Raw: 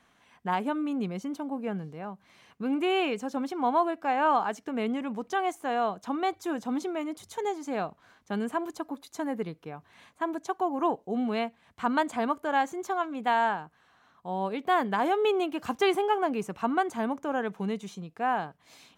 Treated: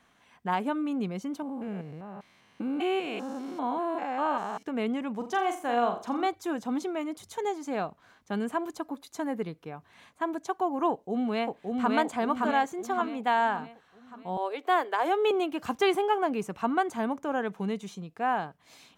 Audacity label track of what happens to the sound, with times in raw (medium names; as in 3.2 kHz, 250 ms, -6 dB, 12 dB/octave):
1.420000	4.630000	spectrogram pixelated in time every 200 ms
5.160000	6.270000	flutter echo walls apart 7.2 m, dies away in 0.36 s
10.900000	11.940000	echo throw 570 ms, feedback 50%, level -2 dB
14.370000	15.310000	steep high-pass 320 Hz 48 dB/octave